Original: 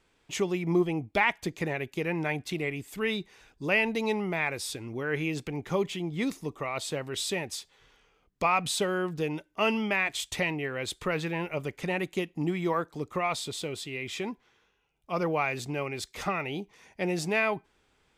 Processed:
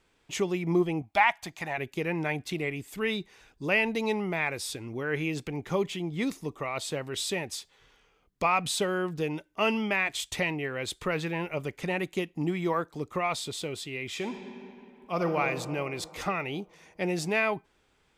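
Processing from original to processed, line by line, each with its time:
0:01.02–0:01.78: low shelf with overshoot 580 Hz −7.5 dB, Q 3
0:14.14–0:15.38: thrown reverb, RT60 2.8 s, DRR 5 dB

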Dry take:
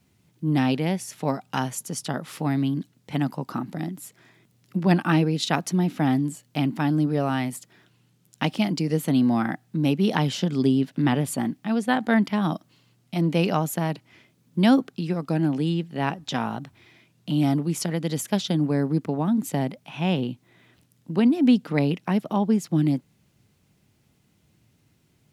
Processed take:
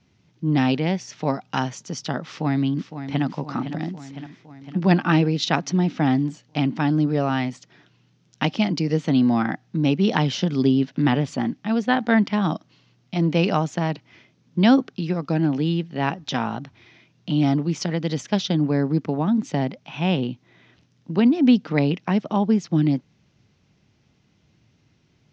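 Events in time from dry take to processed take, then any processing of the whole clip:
0:02.27–0:03.24: delay throw 510 ms, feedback 65%, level −10 dB
whole clip: elliptic low-pass filter 6,100 Hz, stop band 60 dB; level +3 dB

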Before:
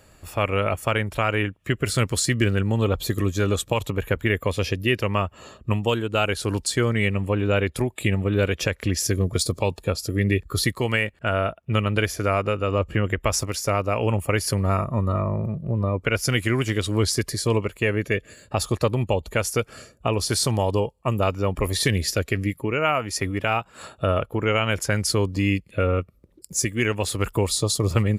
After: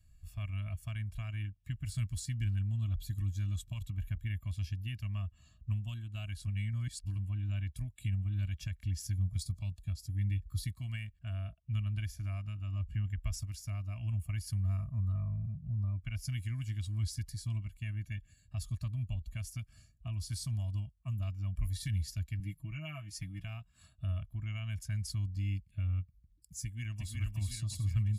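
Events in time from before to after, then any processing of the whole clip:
0:06.47–0:07.18: reverse
0:22.39–0:23.45: comb filter 6.1 ms, depth 85%
0:26.62–0:27.14: delay throw 360 ms, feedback 55%, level −2.5 dB
whole clip: Chebyshev band-stop filter 300–670 Hz, order 3; guitar amp tone stack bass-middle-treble 10-0-1; comb filter 1.8 ms, depth 59%

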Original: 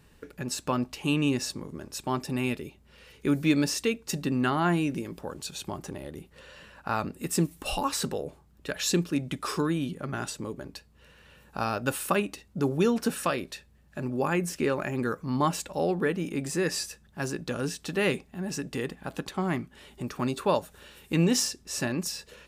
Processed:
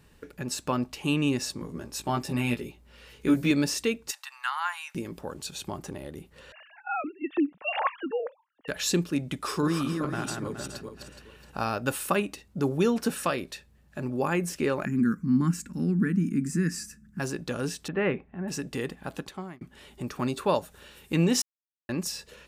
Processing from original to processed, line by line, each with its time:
0:01.58–0:03.51: double-tracking delay 17 ms −3 dB
0:04.11–0:04.95: Chebyshev high-pass filter 890 Hz, order 5
0:06.52–0:08.68: three sine waves on the formant tracks
0:09.42–0:11.70: feedback delay that plays each chunk backwards 210 ms, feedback 47%, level −4 dB
0:14.85–0:17.20: drawn EQ curve 120 Hz 0 dB, 220 Hz +13 dB, 370 Hz −6 dB, 640 Hz −28 dB, 1,500 Hz −1 dB, 2,400 Hz −8 dB, 3,500 Hz −17 dB, 5,200 Hz −6 dB, 7,500 Hz −2 dB, 11,000 Hz −5 dB
0:17.88–0:18.48: low-pass filter 2,300 Hz 24 dB per octave
0:19.09–0:19.61: fade out
0:21.42–0:21.89: silence

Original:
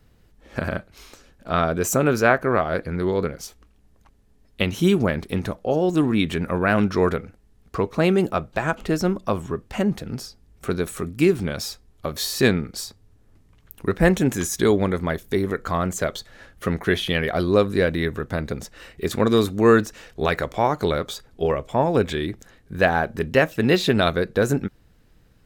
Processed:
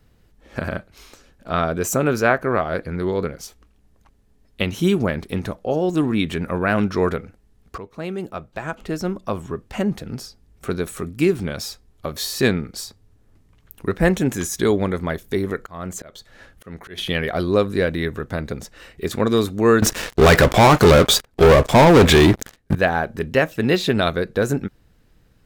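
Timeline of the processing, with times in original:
0:07.78–0:09.78: fade in, from −14.5 dB
0:15.60–0:16.98: volume swells 366 ms
0:19.82–0:22.75: leveller curve on the samples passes 5

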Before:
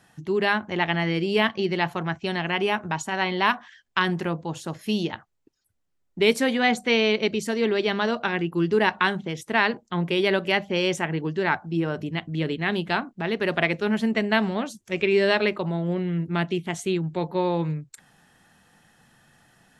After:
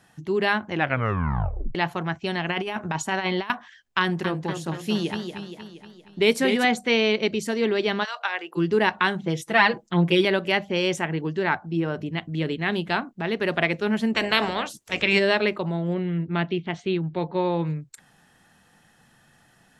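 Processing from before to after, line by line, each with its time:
0:00.70: tape stop 1.05 s
0:02.49–0:03.50: compressor whose output falls as the input rises −26 dBFS, ratio −0.5
0:04.01–0:06.65: feedback echo with a swinging delay time 235 ms, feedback 55%, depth 111 cents, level −7 dB
0:08.03–0:08.56: high-pass filter 1,100 Hz → 370 Hz 24 dB per octave
0:09.21–0:10.25: comb filter 6 ms, depth 99%
0:11.39–0:12.18: high-shelf EQ 8,400 Hz −10 dB
0:14.14–0:15.18: ceiling on every frequency bin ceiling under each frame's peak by 19 dB
0:15.94–0:17.67: low-pass filter 4,400 Hz 24 dB per octave

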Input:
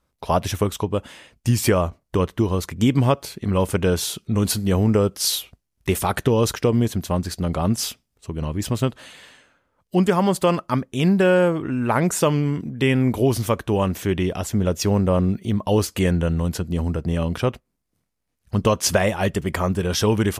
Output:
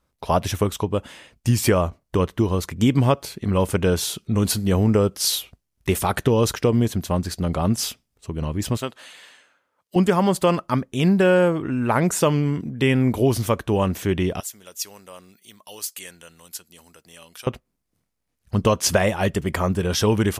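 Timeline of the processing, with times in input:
0:08.77–0:09.96: high-pass filter 660 Hz 6 dB per octave
0:14.40–0:17.47: first difference

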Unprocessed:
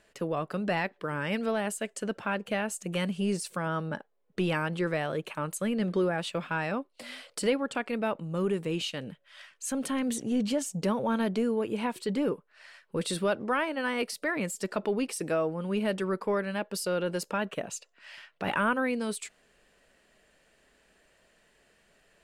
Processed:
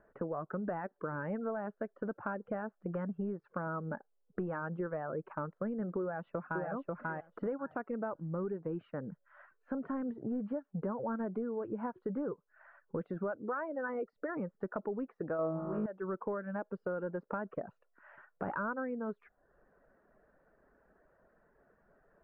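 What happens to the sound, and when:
0:06.01–0:06.66: delay throw 540 ms, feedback 15%, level −2 dB
0:13.35–0:14.30: spectral envelope exaggerated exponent 1.5
0:15.37–0:15.86: flutter between parallel walls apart 3.2 metres, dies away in 1.4 s
whole clip: reverb reduction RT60 0.54 s; Chebyshev low-pass filter 1,500 Hz, order 4; downward compressor 4 to 1, threshold −36 dBFS; level +1 dB

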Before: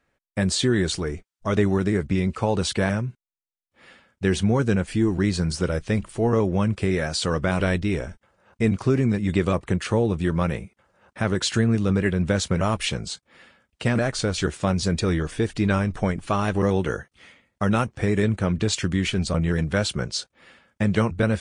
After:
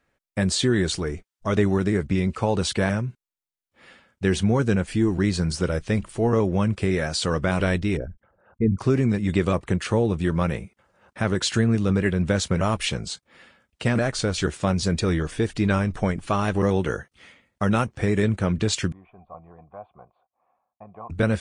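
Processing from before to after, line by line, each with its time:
0:07.97–0:08.80: spectral envelope exaggerated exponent 2
0:18.92–0:21.10: formant resonators in series a

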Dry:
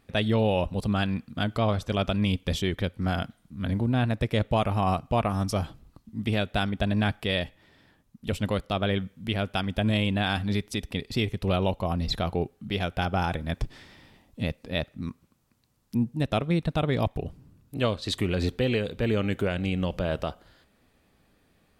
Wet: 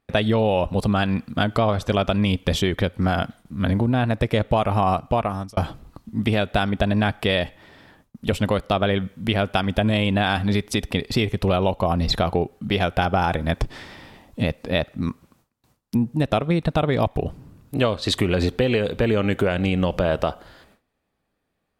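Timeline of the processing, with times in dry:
0:04.94–0:05.57: fade out
whole clip: noise gate with hold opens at −52 dBFS; parametric band 820 Hz +5 dB 2.5 octaves; downward compressor 4 to 1, threshold −25 dBFS; level +8 dB

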